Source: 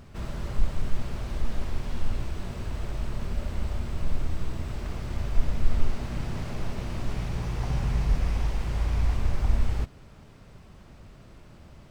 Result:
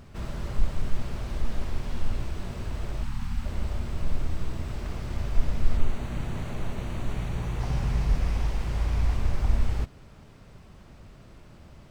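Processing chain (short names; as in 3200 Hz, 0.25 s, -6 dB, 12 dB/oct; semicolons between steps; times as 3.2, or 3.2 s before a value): 3.04–3.44 spectral gain 320–750 Hz -21 dB; 5.77–7.6 bell 5100 Hz -13.5 dB 0.21 oct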